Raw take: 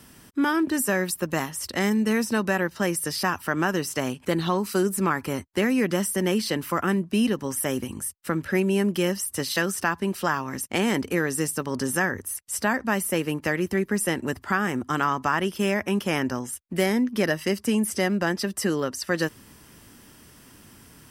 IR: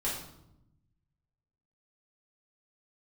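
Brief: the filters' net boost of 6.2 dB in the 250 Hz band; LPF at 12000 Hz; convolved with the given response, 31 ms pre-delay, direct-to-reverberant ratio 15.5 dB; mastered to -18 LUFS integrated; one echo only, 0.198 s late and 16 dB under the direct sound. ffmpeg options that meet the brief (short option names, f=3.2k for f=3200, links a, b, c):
-filter_complex "[0:a]lowpass=12k,equalizer=f=250:t=o:g=8,aecho=1:1:198:0.158,asplit=2[a][b];[1:a]atrim=start_sample=2205,adelay=31[c];[b][c]afir=irnorm=-1:irlink=0,volume=-21dB[d];[a][d]amix=inputs=2:normalize=0,volume=3.5dB"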